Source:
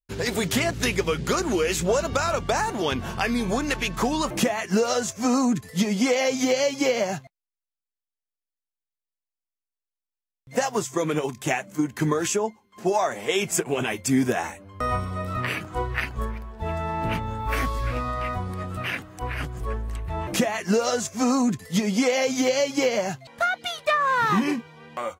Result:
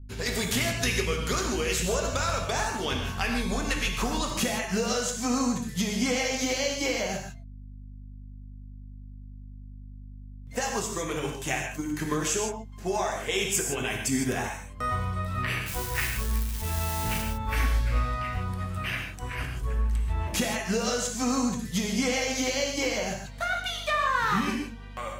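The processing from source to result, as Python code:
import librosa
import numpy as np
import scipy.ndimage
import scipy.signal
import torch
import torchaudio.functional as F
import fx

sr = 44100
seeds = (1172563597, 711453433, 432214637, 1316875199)

y = fx.crossing_spikes(x, sr, level_db=-21.5, at=(15.66, 17.22))
y = fx.tilt_shelf(y, sr, db=-4.5, hz=1100.0)
y = fx.add_hum(y, sr, base_hz=50, snr_db=18)
y = fx.low_shelf(y, sr, hz=140.0, db=11.0)
y = fx.rev_gated(y, sr, seeds[0], gate_ms=180, shape='flat', drr_db=1.5)
y = y * 10.0 ** (-6.5 / 20.0)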